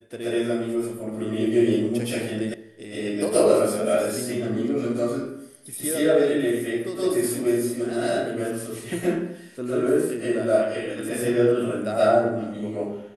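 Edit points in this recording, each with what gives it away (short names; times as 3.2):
2.54 sound cut off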